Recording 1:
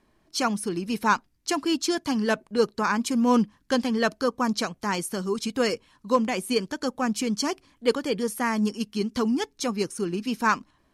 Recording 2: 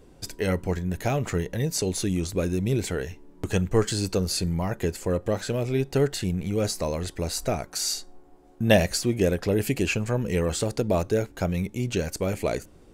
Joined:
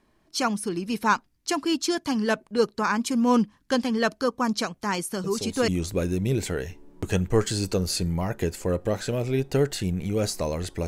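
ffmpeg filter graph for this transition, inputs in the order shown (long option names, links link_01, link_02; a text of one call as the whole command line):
ffmpeg -i cue0.wav -i cue1.wav -filter_complex "[1:a]asplit=2[link_01][link_02];[0:a]apad=whole_dur=10.87,atrim=end=10.87,atrim=end=5.682[link_03];[link_02]atrim=start=2.088:end=7.28[link_04];[link_01]atrim=start=1.65:end=2.09,asetpts=PTS-STARTPTS,volume=-8dB,afade=type=in:duration=0.004:curve=hsin,afade=type=out:start_time=0.436:duration=0.004:curve=hsin,adelay=5240[link_05];[link_03][link_04]acrossfade=duration=0.004:curve1=hsin:curve2=hsin[link_06];[link_06][link_05]amix=inputs=2:normalize=0" out.wav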